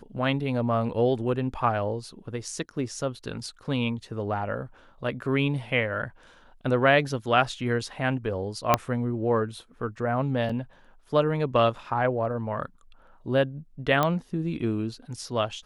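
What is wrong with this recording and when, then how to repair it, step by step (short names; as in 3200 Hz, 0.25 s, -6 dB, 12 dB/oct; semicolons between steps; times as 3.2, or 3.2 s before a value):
8.74 pop -4 dBFS
10.49 gap 4.9 ms
14.03 pop -10 dBFS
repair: de-click; interpolate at 10.49, 4.9 ms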